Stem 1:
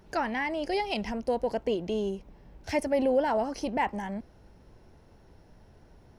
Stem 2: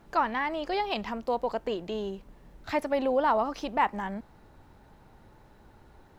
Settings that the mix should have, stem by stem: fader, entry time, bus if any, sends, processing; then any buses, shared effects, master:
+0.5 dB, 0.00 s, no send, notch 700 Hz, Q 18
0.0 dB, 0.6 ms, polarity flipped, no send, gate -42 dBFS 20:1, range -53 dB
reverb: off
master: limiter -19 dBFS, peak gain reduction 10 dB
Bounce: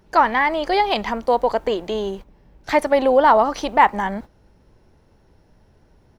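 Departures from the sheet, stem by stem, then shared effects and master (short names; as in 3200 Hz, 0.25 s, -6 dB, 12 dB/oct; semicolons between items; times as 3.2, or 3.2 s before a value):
stem 2 0.0 dB -> +10.0 dB; master: missing limiter -19 dBFS, peak gain reduction 10 dB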